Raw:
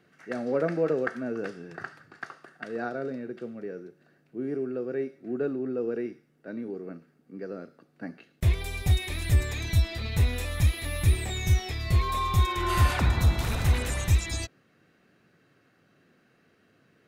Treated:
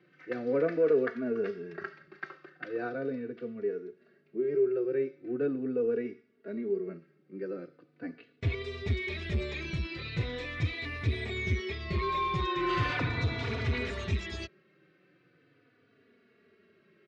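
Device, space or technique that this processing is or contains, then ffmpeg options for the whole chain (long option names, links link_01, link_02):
barber-pole flanger into a guitar amplifier: -filter_complex "[0:a]asplit=2[link_01][link_02];[link_02]adelay=3.4,afreqshift=-0.4[link_03];[link_01][link_03]amix=inputs=2:normalize=1,asoftclip=type=tanh:threshold=-17dB,highpass=99,equalizer=frequency=400:width_type=q:width=4:gain=9,equalizer=frequency=810:width_type=q:width=4:gain=-7,equalizer=frequency=2200:width_type=q:width=4:gain=5,lowpass=frequency=4600:width=0.5412,lowpass=frequency=4600:width=1.3066"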